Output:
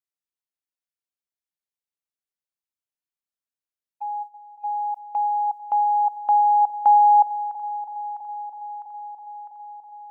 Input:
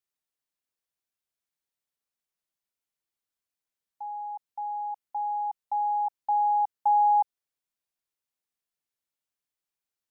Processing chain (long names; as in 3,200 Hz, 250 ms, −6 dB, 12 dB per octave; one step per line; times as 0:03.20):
0:04.22–0:04.63: parametric band 760 Hz → 670 Hz −12 dB 1 octave
noise gate −40 dBFS, range −15 dB
delay that swaps between a low-pass and a high-pass 327 ms, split 830 Hz, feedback 82%, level −13 dB
level +7 dB